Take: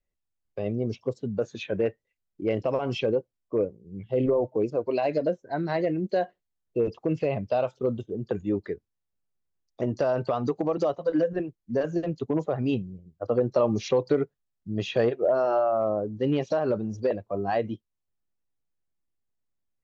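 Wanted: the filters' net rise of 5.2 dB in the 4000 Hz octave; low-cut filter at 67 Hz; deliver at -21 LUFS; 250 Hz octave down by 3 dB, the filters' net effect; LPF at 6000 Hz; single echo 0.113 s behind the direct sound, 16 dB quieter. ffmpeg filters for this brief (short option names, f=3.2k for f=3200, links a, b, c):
-af "highpass=67,lowpass=6k,equalizer=f=250:t=o:g=-4,equalizer=f=4k:t=o:g=7.5,aecho=1:1:113:0.158,volume=7.5dB"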